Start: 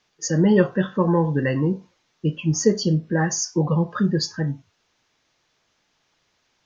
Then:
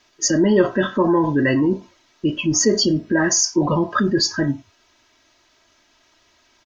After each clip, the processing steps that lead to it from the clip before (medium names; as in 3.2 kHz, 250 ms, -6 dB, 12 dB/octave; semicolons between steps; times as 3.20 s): comb 3.1 ms, depth 72%; in parallel at -1 dB: compressor with a negative ratio -25 dBFS, ratio -1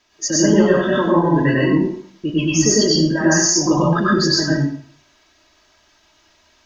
plate-style reverb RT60 0.55 s, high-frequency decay 0.95×, pre-delay 85 ms, DRR -5 dB; trim -3.5 dB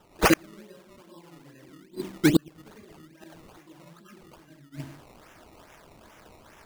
inverted gate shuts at -11 dBFS, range -39 dB; decimation with a swept rate 19×, swing 100% 2.4 Hz; trim +4 dB